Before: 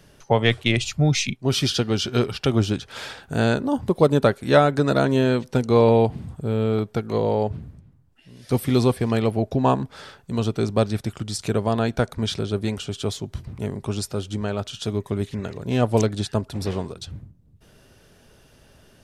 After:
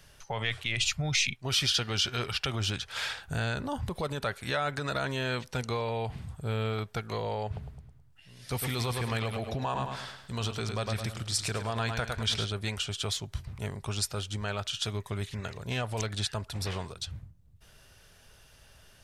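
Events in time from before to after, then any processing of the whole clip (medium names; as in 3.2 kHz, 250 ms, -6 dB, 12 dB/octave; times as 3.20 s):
3.26–4.01 s: bass shelf 210 Hz +7.5 dB
7.46–12.46 s: feedback delay 106 ms, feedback 42%, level -9 dB
whole clip: dynamic bell 2.1 kHz, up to +4 dB, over -38 dBFS, Q 0.74; peak limiter -15.5 dBFS; peaking EQ 280 Hz -14 dB 2.2 oct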